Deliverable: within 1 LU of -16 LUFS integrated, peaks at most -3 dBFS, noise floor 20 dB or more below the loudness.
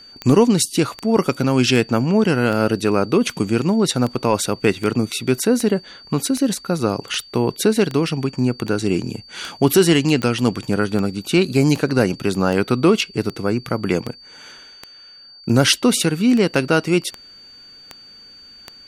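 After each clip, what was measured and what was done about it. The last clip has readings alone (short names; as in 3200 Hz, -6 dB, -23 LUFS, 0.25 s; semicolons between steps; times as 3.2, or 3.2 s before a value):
clicks 25; steady tone 4600 Hz; tone level -41 dBFS; loudness -18.5 LUFS; peak -4.0 dBFS; loudness target -16.0 LUFS
-> de-click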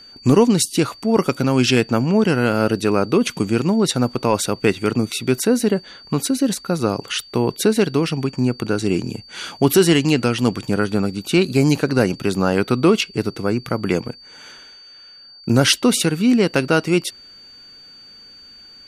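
clicks 0; steady tone 4600 Hz; tone level -41 dBFS
-> notch 4600 Hz, Q 30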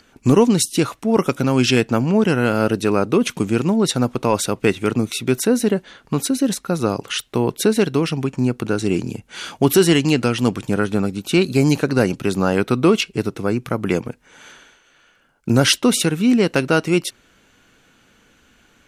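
steady tone none; loudness -18.5 LUFS; peak -3.5 dBFS; loudness target -16.0 LUFS
-> gain +2.5 dB; limiter -3 dBFS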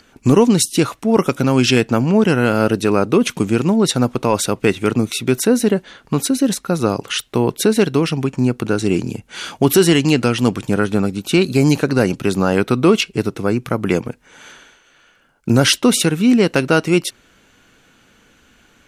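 loudness -16.5 LUFS; peak -3.0 dBFS; noise floor -54 dBFS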